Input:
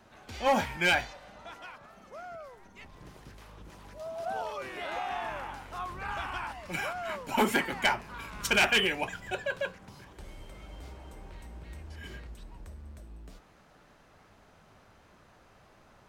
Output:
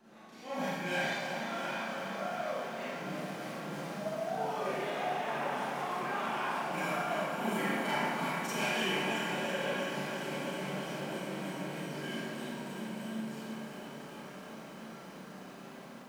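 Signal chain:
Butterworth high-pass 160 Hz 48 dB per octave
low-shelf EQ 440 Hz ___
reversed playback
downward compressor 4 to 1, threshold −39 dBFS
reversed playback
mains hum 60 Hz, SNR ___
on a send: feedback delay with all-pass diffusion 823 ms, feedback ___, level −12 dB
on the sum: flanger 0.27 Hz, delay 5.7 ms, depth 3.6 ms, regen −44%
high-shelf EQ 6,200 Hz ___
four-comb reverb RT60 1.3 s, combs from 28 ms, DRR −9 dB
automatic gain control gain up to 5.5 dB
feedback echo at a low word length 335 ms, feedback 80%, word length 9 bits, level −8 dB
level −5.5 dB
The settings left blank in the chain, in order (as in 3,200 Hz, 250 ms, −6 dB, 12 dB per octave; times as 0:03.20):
+10 dB, 32 dB, 73%, +2.5 dB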